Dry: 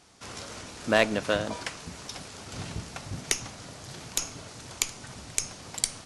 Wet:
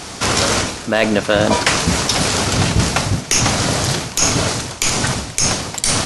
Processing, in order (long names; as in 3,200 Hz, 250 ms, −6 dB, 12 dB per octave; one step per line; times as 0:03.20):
reversed playback
downward compressor 6 to 1, threshold −39 dBFS, peak gain reduction 21 dB
reversed playback
boost into a limiter +28.5 dB
level −1 dB